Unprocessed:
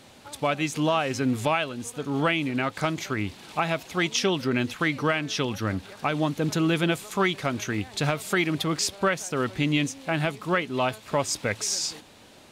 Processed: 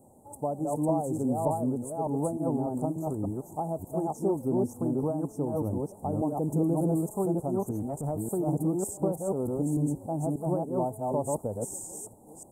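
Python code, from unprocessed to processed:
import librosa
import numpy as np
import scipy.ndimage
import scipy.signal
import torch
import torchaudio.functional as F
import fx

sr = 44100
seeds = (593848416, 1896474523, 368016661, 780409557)

y = fx.reverse_delay(x, sr, ms=296, wet_db=-1.0)
y = scipy.signal.sosfilt(scipy.signal.cheby1(4, 1.0, [870.0, 8000.0], 'bandstop', fs=sr, output='sos'), y)
y = fx.transient(y, sr, attack_db=-8, sustain_db=0, at=(7.74, 8.18), fade=0.02)
y = F.gain(torch.from_numpy(y), -3.5).numpy()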